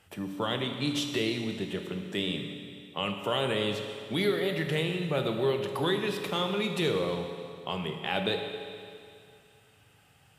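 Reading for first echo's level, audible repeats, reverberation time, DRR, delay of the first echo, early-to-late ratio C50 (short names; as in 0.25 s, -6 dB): none, none, 2.4 s, 4.0 dB, none, 5.5 dB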